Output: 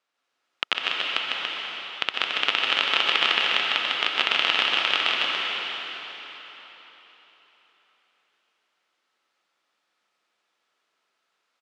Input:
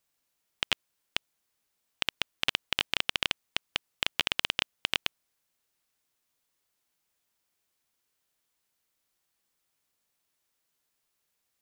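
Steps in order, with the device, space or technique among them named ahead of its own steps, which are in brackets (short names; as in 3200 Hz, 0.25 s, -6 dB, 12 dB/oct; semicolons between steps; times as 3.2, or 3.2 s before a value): station announcement (BPF 330–3700 Hz; bell 1300 Hz +7.5 dB 0.22 oct; loudspeakers at several distances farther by 52 m -4 dB, 98 m -6 dB; reverb RT60 4.1 s, pre-delay 0.118 s, DRR -1.5 dB); gain +4.5 dB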